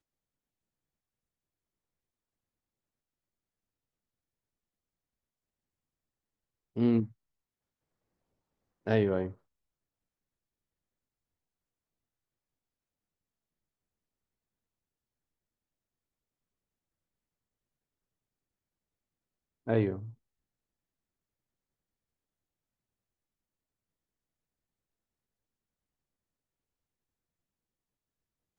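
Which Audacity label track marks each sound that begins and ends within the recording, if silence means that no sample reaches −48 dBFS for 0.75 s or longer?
6.760000	7.110000	sound
8.860000	9.340000	sound
19.670000	20.130000	sound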